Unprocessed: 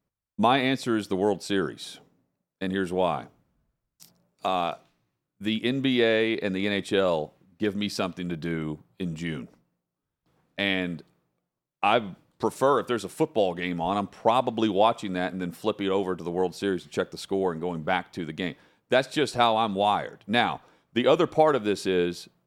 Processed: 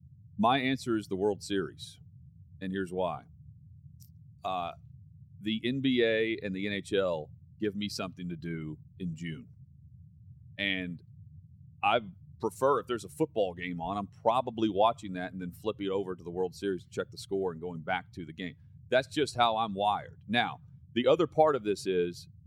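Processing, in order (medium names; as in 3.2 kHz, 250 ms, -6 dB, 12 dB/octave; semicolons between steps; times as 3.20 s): expander on every frequency bin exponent 1.5; band noise 76–160 Hz -51 dBFS; trim -2 dB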